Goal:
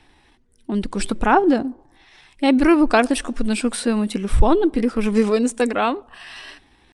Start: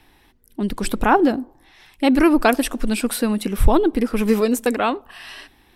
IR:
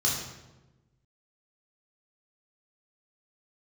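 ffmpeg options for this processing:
-af "atempo=0.83,aresample=22050,aresample=44100"

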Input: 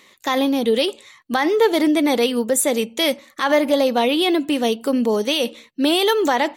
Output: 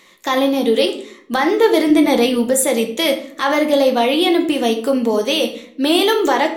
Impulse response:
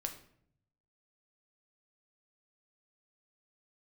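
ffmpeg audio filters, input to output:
-filter_complex "[0:a]asettb=1/sr,asplit=3[s0][s1][s2];[s0]atrim=end=1.904[s3];[s1]atrim=start=1.9:end=2.48,asetpts=PTS-STARTPTS,afade=t=in:d=0.004:c=qsin,afade=t=out:st=0.576:d=0.004:c=qsin,lowshelf=f=210:g=8[s4];[s2]atrim=start=2.476[s5];[s3][s4]acrossfade=d=0.004:c1=hsin:c2=qsin[s6];[s6][s5]acrossfade=d=0.004:c1=qsin:c2=hsin[s7];[1:a]atrim=start_sample=2205,asetrate=48510,aresample=44100[s8];[s7][s8]afir=irnorm=-1:irlink=0,volume=1.58"

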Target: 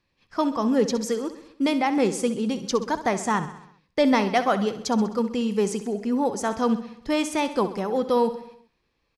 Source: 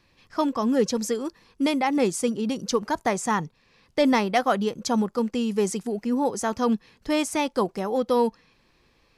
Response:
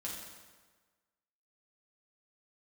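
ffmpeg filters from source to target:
-filter_complex "[0:a]agate=range=0.282:threshold=0.00178:ratio=16:detection=peak,highshelf=f=11000:g=-9.5,aecho=1:1:65|130|195|260|325|390:0.224|0.128|0.0727|0.0415|0.0236|0.0135,asplit=2[s0][s1];[1:a]atrim=start_sample=2205,afade=t=out:st=0.33:d=0.01,atrim=end_sample=14994[s2];[s1][s2]afir=irnorm=-1:irlink=0,volume=0.075[s3];[s0][s3]amix=inputs=2:normalize=0"

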